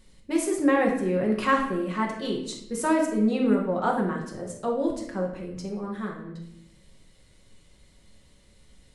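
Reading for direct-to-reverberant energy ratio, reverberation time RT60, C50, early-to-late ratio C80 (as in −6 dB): −1.0 dB, 0.80 s, 5.0 dB, 8.5 dB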